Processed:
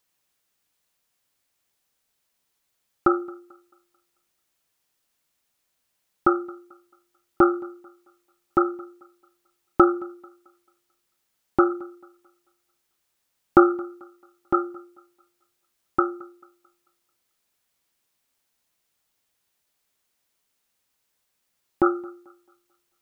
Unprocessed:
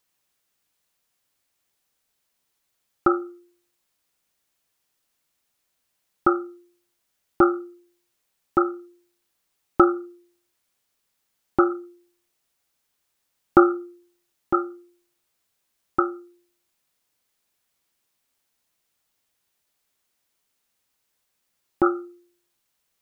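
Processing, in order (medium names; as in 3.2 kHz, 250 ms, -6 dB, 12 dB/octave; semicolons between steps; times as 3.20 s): thinning echo 220 ms, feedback 38%, high-pass 250 Hz, level -23 dB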